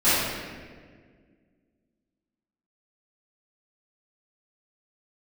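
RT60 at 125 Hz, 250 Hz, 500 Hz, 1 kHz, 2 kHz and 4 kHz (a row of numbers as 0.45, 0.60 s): 2.3, 2.5, 2.1, 1.4, 1.5, 1.1 s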